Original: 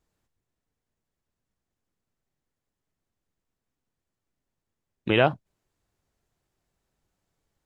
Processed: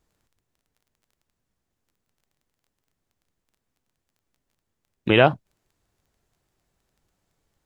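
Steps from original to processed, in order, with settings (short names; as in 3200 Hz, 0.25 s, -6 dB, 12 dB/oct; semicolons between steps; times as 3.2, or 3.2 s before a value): crackle 13/s -55 dBFS; gain +4.5 dB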